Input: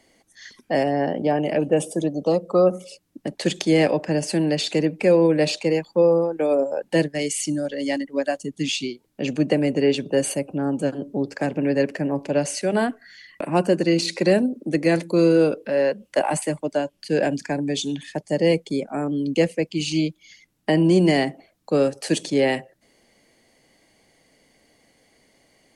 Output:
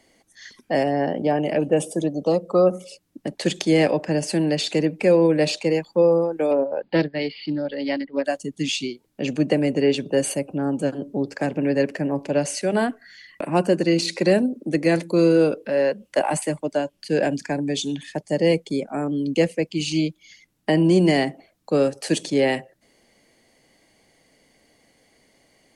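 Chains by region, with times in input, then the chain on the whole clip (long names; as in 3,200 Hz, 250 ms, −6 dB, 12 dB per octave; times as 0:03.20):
0:06.51–0:08.25: Chebyshev low-pass filter 4,900 Hz, order 10 + highs frequency-modulated by the lows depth 0.18 ms
whole clip: no processing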